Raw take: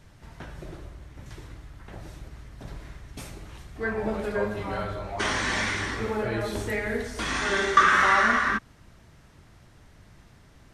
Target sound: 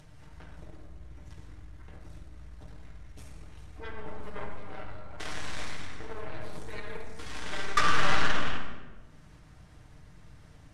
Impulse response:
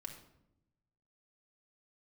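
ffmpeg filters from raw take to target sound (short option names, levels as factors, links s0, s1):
-filter_complex "[0:a]aeval=exprs='0.631*(cos(1*acos(clip(val(0)/0.631,-1,1)))-cos(1*PI/2))+0.0708*(cos(7*acos(clip(val(0)/0.631,-1,1)))-cos(7*PI/2))+0.0708*(cos(8*acos(clip(val(0)/0.631,-1,1)))-cos(8*PI/2))':c=same,acompressor=mode=upward:threshold=0.02:ratio=2.5[s0];[1:a]atrim=start_sample=2205,asetrate=22932,aresample=44100[s1];[s0][s1]afir=irnorm=-1:irlink=0,volume=0.501"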